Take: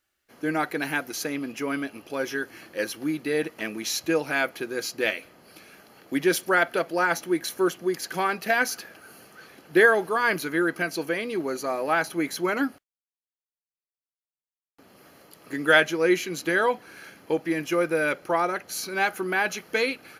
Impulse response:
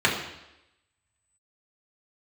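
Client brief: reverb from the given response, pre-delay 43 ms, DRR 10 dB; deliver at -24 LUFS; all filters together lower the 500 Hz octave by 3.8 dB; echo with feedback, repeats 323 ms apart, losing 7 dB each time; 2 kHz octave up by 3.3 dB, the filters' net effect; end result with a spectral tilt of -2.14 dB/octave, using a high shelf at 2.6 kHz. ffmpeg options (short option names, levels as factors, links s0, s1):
-filter_complex "[0:a]equalizer=f=500:t=o:g=-5,equalizer=f=2000:t=o:g=8,highshelf=f=2600:g=-8,aecho=1:1:323|646|969|1292|1615:0.447|0.201|0.0905|0.0407|0.0183,asplit=2[s0][s1];[1:a]atrim=start_sample=2205,adelay=43[s2];[s1][s2]afir=irnorm=-1:irlink=0,volume=0.0422[s3];[s0][s3]amix=inputs=2:normalize=0"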